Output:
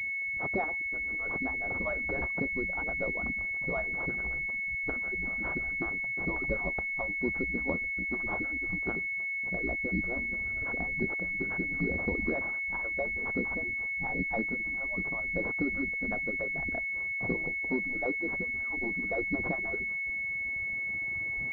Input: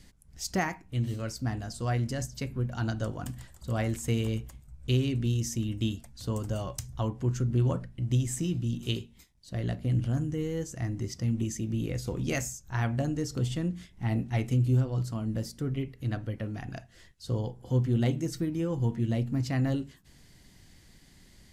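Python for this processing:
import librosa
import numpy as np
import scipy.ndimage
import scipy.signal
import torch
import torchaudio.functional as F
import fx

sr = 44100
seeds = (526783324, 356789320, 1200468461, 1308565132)

y = fx.hpss_only(x, sr, part='percussive')
y = fx.recorder_agc(y, sr, target_db=-21.0, rise_db_per_s=6.2, max_gain_db=30)
y = fx.pwm(y, sr, carrier_hz=2200.0)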